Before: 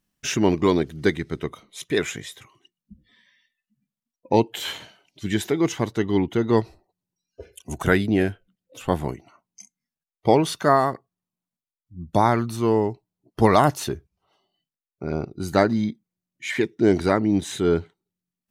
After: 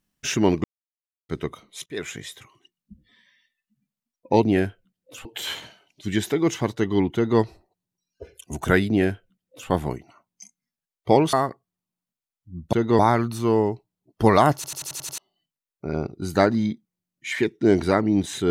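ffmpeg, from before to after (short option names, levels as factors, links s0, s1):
-filter_complex "[0:a]asplit=16[s0][s1][s2][s3][s4][s5][s6][s7][s8][s9][s10][s11][s12][s13][s14][s15];[s0]atrim=end=0.64,asetpts=PTS-STARTPTS,afade=t=out:st=0.636:d=0.004:c=hsin[s16];[s1]atrim=start=0.64:end=1.29,asetpts=PTS-STARTPTS,volume=0[s17];[s2]atrim=start=1.29:end=1.86,asetpts=PTS-STARTPTS,afade=t=in:d=0.004:c=hsin,afade=t=out:st=0.566:d=0.004:c=hsin:silence=0.1[s18];[s3]atrim=start=1.86:end=4.432,asetpts=PTS-STARTPTS,afade=t=in:d=0.4:silence=0.1[s19];[s4]atrim=start=8.058:end=8.882[s20];[s5]atrim=start=4.428:end=10.512[s21];[s6]atrim=start=10.768:end=12.172[s22];[s7]atrim=start=6.328:end=6.592[s23];[s8]atrim=start=12.168:end=13.822[s24];[s9]atrim=start=13.728:end=13.822[s25];[s10]atrim=start=13.728:end=13.822[s26];[s11]atrim=start=13.728:end=13.822[s27];[s12]atrim=start=13.728:end=13.822[s28];[s13]atrim=start=13.728:end=13.822[s29];[s14]atrim=start=13.728:end=13.822[s30];[s15]atrim=start=14.358[s31];[s16][s17][s18][s19]concat=n=4:v=0:a=1[s32];[s32][s20]acrossfade=d=0.004:c1=hsin:c2=hsin[s33];[s33][s21]acrossfade=d=0.004:c1=hsin:c2=hsin[s34];[s34][s22]acrossfade=d=0.004:c1=hsin:c2=hsin[s35];[s35][s23]acrossfade=d=0.004:c1=hsin:c2=hsin[s36];[s36][s24]acrossfade=d=0.004:c1=hsin:c2=hsin[s37];[s37][s25]acrossfade=d=0.004:c1=hsin:c2=hsin[s38];[s38][s26]acrossfade=d=0.004:c1=hsin:c2=hsin[s39];[s39][s27]acrossfade=d=0.004:c1=hsin:c2=hsin[s40];[s40][s28]acrossfade=d=0.004:c1=hsin:c2=hsin[s41];[s41][s29]acrossfade=d=0.004:c1=hsin:c2=hsin[s42];[s42][s30]acrossfade=d=0.004:c1=hsin:c2=hsin[s43];[s43][s31]acrossfade=d=0.004:c1=hsin:c2=hsin"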